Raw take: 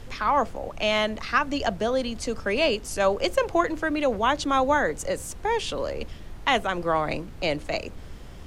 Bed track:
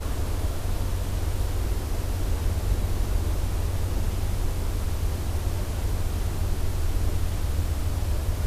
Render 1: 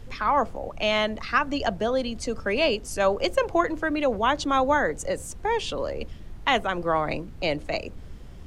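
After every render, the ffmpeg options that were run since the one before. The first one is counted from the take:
-af "afftdn=nr=6:nf=-41"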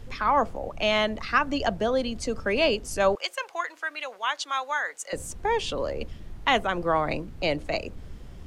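-filter_complex "[0:a]asettb=1/sr,asplit=3[s0][s1][s2];[s0]atrim=end=3.154[s3];[s1]atrim=start=3.15:end=5.13,asetpts=PTS-STARTPTS,afade=t=in:d=0.004:c=qsin,afade=t=out:st=1.976:d=0.004:c=qsin,highpass=1300[s4];[s2]atrim=start=5.126[s5];[s3][s4]acrossfade=d=0.004:c1=hsin:c2=qsin[s6];[s6][s5]acrossfade=d=0.004:c1=qsin:c2=hsin"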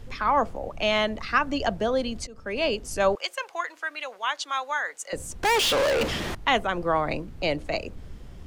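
-filter_complex "[0:a]asettb=1/sr,asplit=3[s0][s1][s2];[s0]atrim=end=5.434[s3];[s1]atrim=start=5.43:end=6.35,asetpts=PTS-STARTPTS,afade=t=in:d=0.004:c=qsin,afade=t=out:st=0.916:d=0.004:c=qsin,asplit=2[s4][s5];[s5]highpass=f=720:p=1,volume=50.1,asoftclip=type=tanh:threshold=0.15[s6];[s4][s6]amix=inputs=2:normalize=0,lowpass=f=7900:p=1,volume=0.501[s7];[s2]atrim=start=6.346[s8];[s3][s7]acrossfade=d=0.004:c1=hsin:c2=qsin[s9];[s9][s8]acrossfade=d=0.004:c1=qsin:c2=hsin,asplit=2[s10][s11];[s10]atrim=end=2.27,asetpts=PTS-STARTPTS,afade=t=out:st=2.266:d=0.004:c=hsin:silence=0.0841395[s12];[s11]atrim=start=2.27,asetpts=PTS-STARTPTS,afade=t=in:d=0.77:c=qsin:silence=0.0841395[s13];[s12][s13]concat=n=2:v=0:a=1"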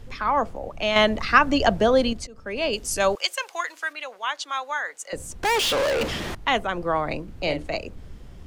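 -filter_complex "[0:a]asettb=1/sr,asplit=3[s0][s1][s2];[s0]atrim=end=2.734[s3];[s1]atrim=start=2.73:end=3.93,asetpts=PTS-STARTPTS,afade=t=in:d=0.004:c=qsin,afade=t=out:st=1.196:d=0.004:c=qsin,highshelf=f=2700:g=10[s4];[s2]atrim=start=3.926[s5];[s3][s4]acrossfade=d=0.004:c1=hsin:c2=qsin[s6];[s6][s5]acrossfade=d=0.004:c1=qsin:c2=hsin,asettb=1/sr,asplit=3[s7][s8][s9];[s7]atrim=end=7.244[s10];[s8]atrim=start=7.24:end=7.67,asetpts=PTS-STARTPTS,afade=t=in:d=0.004:c=qsin,afade=t=out:st=0.426:d=0.004:c=qsin,asplit=2[s11][s12];[s12]adelay=39,volume=0.447[s13];[s11][s13]amix=inputs=2:normalize=0,atrim=end_sample=18963[s14];[s9]atrim=start=7.666[s15];[s10][s14]acrossfade=d=0.004:c1=hsin:c2=qsin[s16];[s16][s15]acrossfade=d=0.004:c1=qsin:c2=hsin,asplit=3[s17][s18][s19];[s17]atrim=end=0.962[s20];[s18]atrim=start=0.958:end=2.132,asetpts=PTS-STARTPTS,volume=2.11[s21];[s19]atrim=start=2.128[s22];[s20][s21]acrossfade=d=0.004:c1=hsin:c2=hsin[s23];[s23][s22]acrossfade=d=0.004:c1=hsin:c2=hsin"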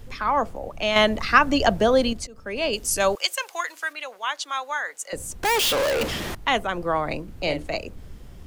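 -af "highshelf=f=11000:g=12"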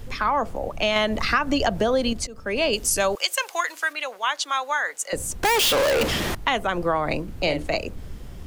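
-filter_complex "[0:a]asplit=2[s0][s1];[s1]alimiter=limit=0.2:level=0:latency=1:release=91,volume=0.708[s2];[s0][s2]amix=inputs=2:normalize=0,acompressor=threshold=0.126:ratio=5"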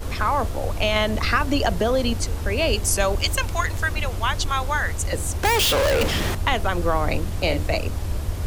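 -filter_complex "[1:a]volume=0.944[s0];[0:a][s0]amix=inputs=2:normalize=0"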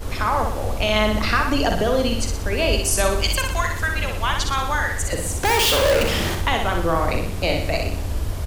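-filter_complex "[0:a]asplit=2[s0][s1];[s1]adelay=43,volume=0.237[s2];[s0][s2]amix=inputs=2:normalize=0,asplit=2[s3][s4];[s4]aecho=0:1:61|122|183|244|305|366:0.562|0.281|0.141|0.0703|0.0351|0.0176[s5];[s3][s5]amix=inputs=2:normalize=0"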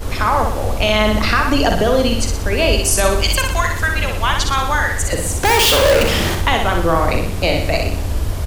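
-af "volume=1.78,alimiter=limit=0.708:level=0:latency=1"

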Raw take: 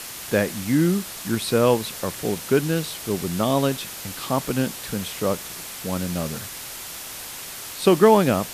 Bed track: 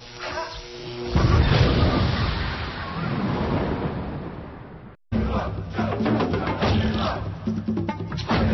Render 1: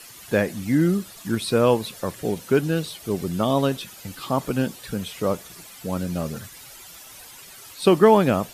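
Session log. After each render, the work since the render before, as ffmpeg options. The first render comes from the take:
-af "afftdn=nr=12:nf=-36"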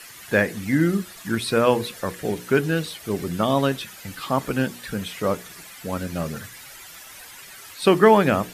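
-af "equalizer=f=1800:t=o:w=0.96:g=7,bandreject=f=60:t=h:w=6,bandreject=f=120:t=h:w=6,bandreject=f=180:t=h:w=6,bandreject=f=240:t=h:w=6,bandreject=f=300:t=h:w=6,bandreject=f=360:t=h:w=6,bandreject=f=420:t=h:w=6,bandreject=f=480:t=h:w=6"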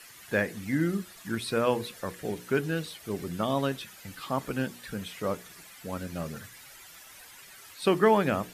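-af "volume=0.422"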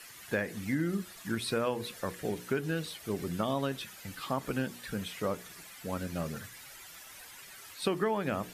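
-af "acompressor=threshold=0.0447:ratio=6"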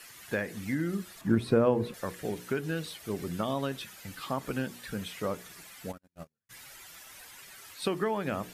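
-filter_complex "[0:a]asettb=1/sr,asplit=3[s0][s1][s2];[s0]atrim=end=1.214[s3];[s1]atrim=start=1.21:end=1.94,asetpts=PTS-STARTPTS,afade=t=in:d=0.004:c=qsin,afade=t=out:st=0.726:d=0.004:c=qsin,tiltshelf=f=1400:g=10[s4];[s2]atrim=start=1.936[s5];[s3][s4]acrossfade=d=0.004:c1=hsin:c2=qsin[s6];[s6][s5]acrossfade=d=0.004:c1=qsin:c2=hsin,asplit=3[s7][s8][s9];[s7]afade=t=out:st=5.91:d=0.02[s10];[s8]agate=range=0.00282:threshold=0.0251:ratio=16:release=100:detection=peak,afade=t=in:st=5.91:d=0.02,afade=t=out:st=6.49:d=0.02[s11];[s9]afade=t=in:st=6.49:d=0.02[s12];[s10][s11][s12]amix=inputs=3:normalize=0"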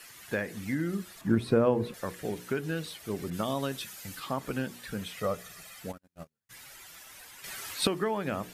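-filter_complex "[0:a]asettb=1/sr,asplit=3[s0][s1][s2];[s0]atrim=end=3.304[s3];[s1]atrim=start=3.3:end=4.2,asetpts=PTS-STARTPTS,afade=t=in:d=0.004:c=qsin,afade=t=out:st=0.896:d=0.004:c=qsin,adynamicequalizer=threshold=0.00178:dfrequency=4100:dqfactor=0.7:tfrequency=4100:tqfactor=0.7:attack=5:release=100:ratio=0.375:range=3:mode=boostabove:tftype=highshelf[s4];[s2]atrim=start=4.196[s5];[s3][s4]acrossfade=d=0.004:c1=hsin:c2=qsin[s6];[s6][s5]acrossfade=d=0.004:c1=qsin:c2=hsin,asettb=1/sr,asplit=3[s7][s8][s9];[s7]atrim=end=5.174[s10];[s8]atrim=start=5.17:end=5.8,asetpts=PTS-STARTPTS,afade=t=in:d=0.004:c=qsin,afade=t=out:st=0.626:d=0.004:c=qsin,aecho=1:1:1.6:0.56,atrim=end_sample=27783[s11];[s9]atrim=start=5.796[s12];[s10][s11]acrossfade=d=0.004:c1=hsin:c2=qsin[s13];[s13][s12]acrossfade=d=0.004:c1=qsin:c2=hsin,asplit=3[s14][s15][s16];[s14]atrim=end=7.442[s17];[s15]atrim=start=7.438:end=7.872,asetpts=PTS-STARTPTS,volume=2.82[s18];[s16]atrim=start=7.868[s19];[s17][s18]acrossfade=d=0.004:c1=hsin:c2=hsin[s20];[s20][s19]acrossfade=d=0.004:c1=hsin:c2=hsin"

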